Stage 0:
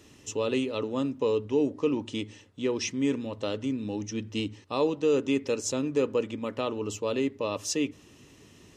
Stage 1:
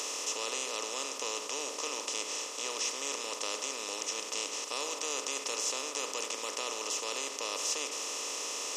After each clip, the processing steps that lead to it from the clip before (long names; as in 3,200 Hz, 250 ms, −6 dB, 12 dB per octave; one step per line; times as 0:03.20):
compressor on every frequency bin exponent 0.2
high-pass filter 1,200 Hz 12 dB per octave
parametric band 1,900 Hz −5.5 dB 1.7 octaves
level −4.5 dB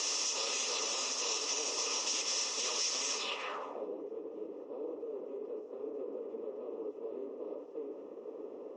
random phases in long frames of 50 ms
brickwall limiter −28.5 dBFS, peak gain reduction 7.5 dB
low-pass filter sweep 5,600 Hz → 400 Hz, 0:03.15–0:03.92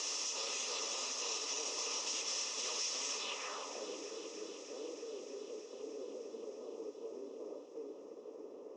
feedback echo with a high-pass in the loop 311 ms, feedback 81%, high-pass 390 Hz, level −12 dB
level −5 dB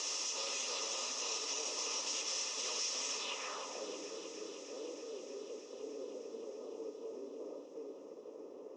convolution reverb RT60 1.1 s, pre-delay 3 ms, DRR 11 dB